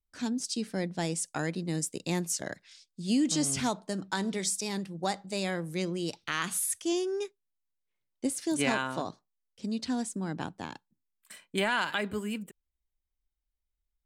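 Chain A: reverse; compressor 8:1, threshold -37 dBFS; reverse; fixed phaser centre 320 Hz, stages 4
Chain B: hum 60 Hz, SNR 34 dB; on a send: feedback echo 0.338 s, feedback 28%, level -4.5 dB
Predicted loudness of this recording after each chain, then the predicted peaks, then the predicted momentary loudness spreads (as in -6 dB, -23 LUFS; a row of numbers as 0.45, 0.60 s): -43.0, -31.0 LUFS; -26.5, -14.5 dBFS; 10, 11 LU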